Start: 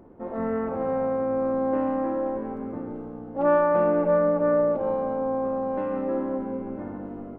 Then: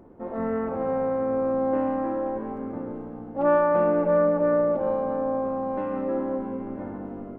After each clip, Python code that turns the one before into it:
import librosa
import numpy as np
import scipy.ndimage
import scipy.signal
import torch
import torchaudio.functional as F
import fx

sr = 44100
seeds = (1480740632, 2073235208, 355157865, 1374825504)

y = x + 10.0 ** (-16.0 / 20.0) * np.pad(x, (int(665 * sr / 1000.0), 0))[:len(x)]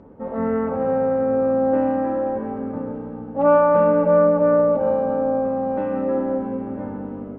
y = fx.air_absorb(x, sr, metres=110.0)
y = fx.notch_comb(y, sr, f0_hz=350.0)
y = F.gain(torch.from_numpy(y), 6.0).numpy()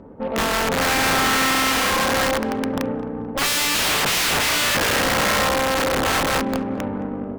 y = (np.mod(10.0 ** (18.5 / 20.0) * x + 1.0, 2.0) - 1.0) / 10.0 ** (18.5 / 20.0)
y = fx.cheby_harmonics(y, sr, harmonics=(8,), levels_db=(-24,), full_scale_db=-18.5)
y = fx.echo_filtered(y, sr, ms=219, feedback_pct=56, hz=2200.0, wet_db=-16.5)
y = F.gain(torch.from_numpy(y), 3.5).numpy()